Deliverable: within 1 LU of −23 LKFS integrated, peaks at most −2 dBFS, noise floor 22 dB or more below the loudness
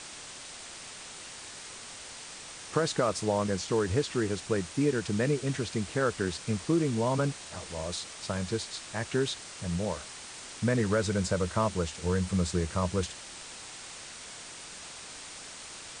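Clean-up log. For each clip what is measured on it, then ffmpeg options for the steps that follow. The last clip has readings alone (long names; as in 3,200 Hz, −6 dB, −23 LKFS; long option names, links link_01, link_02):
background noise floor −45 dBFS; target noise floor −54 dBFS; integrated loudness −32.0 LKFS; sample peak −12.5 dBFS; target loudness −23.0 LKFS
→ -af "afftdn=noise_reduction=9:noise_floor=-45"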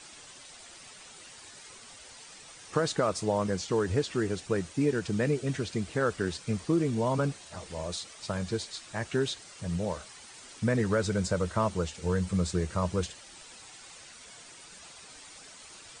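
background noise floor −50 dBFS; target noise floor −53 dBFS
→ -af "afftdn=noise_reduction=6:noise_floor=-50"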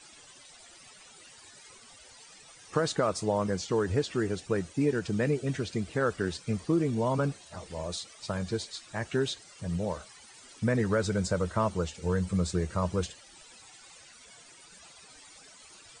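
background noise floor −54 dBFS; integrated loudness −30.5 LKFS; sample peak −12.5 dBFS; target loudness −23.0 LKFS
→ -af "volume=7.5dB"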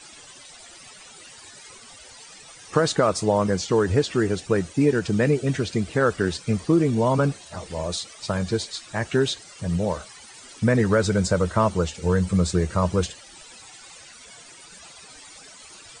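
integrated loudness −23.0 LKFS; sample peak −5.0 dBFS; background noise floor −46 dBFS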